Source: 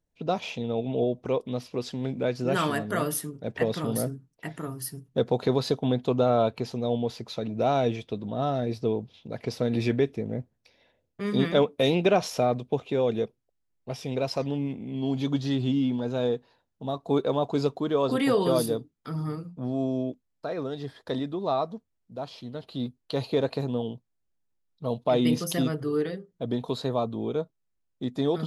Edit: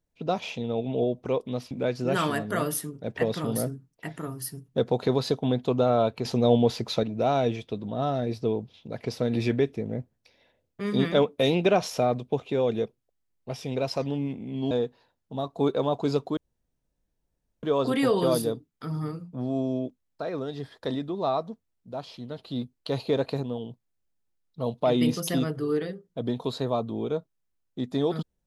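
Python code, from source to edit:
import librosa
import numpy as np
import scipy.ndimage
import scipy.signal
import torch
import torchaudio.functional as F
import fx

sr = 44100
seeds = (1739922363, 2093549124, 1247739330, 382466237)

y = fx.edit(x, sr, fx.cut(start_s=1.71, length_s=0.4),
    fx.clip_gain(start_s=6.65, length_s=0.78, db=7.0),
    fx.cut(start_s=15.11, length_s=1.1),
    fx.insert_room_tone(at_s=17.87, length_s=1.26),
    fx.clip_gain(start_s=23.67, length_s=0.26, db=-3.5), tone=tone)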